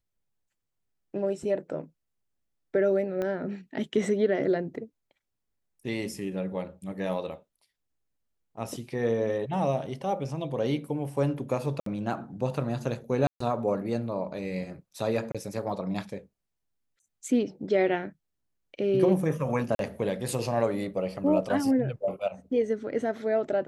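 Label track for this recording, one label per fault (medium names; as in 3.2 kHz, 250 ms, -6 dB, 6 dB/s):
3.220000	3.220000	pop -20 dBFS
11.800000	11.860000	dropout 63 ms
13.270000	13.400000	dropout 134 ms
15.320000	15.350000	dropout 26 ms
19.750000	19.790000	dropout 42 ms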